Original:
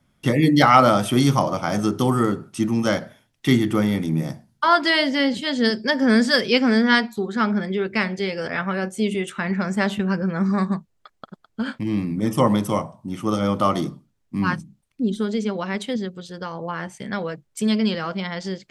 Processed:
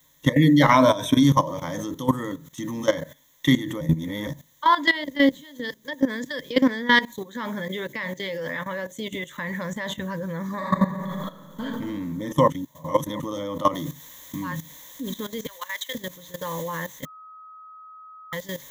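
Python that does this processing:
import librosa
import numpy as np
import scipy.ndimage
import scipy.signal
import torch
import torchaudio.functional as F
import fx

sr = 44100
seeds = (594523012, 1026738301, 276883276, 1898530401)

y = fx.ripple_eq(x, sr, per_octave=1.6, db=14, at=(0.71, 1.23))
y = fx.peak_eq(y, sr, hz=420.0, db=-2.5, octaves=2.0, at=(2.19, 2.73))
y = fx.level_steps(y, sr, step_db=21, at=(4.9, 6.57))
y = fx.highpass(y, sr, hz=120.0, slope=12, at=(7.13, 9.11))
y = fx.reverb_throw(y, sr, start_s=10.56, length_s=1.06, rt60_s=1.8, drr_db=-8.0)
y = fx.noise_floor_step(y, sr, seeds[0], at_s=13.75, before_db=-54, after_db=-41, tilt_db=0.0)
y = fx.highpass(y, sr, hz=1200.0, slope=12, at=(15.46, 15.95))
y = fx.edit(y, sr, fx.reverse_span(start_s=3.81, length_s=0.46),
    fx.reverse_span(start_s=12.5, length_s=0.7),
    fx.bleep(start_s=17.05, length_s=1.28, hz=1270.0, db=-22.5), tone=tone)
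y = fx.ripple_eq(y, sr, per_octave=1.1, db=15)
y = fx.level_steps(y, sr, step_db=15)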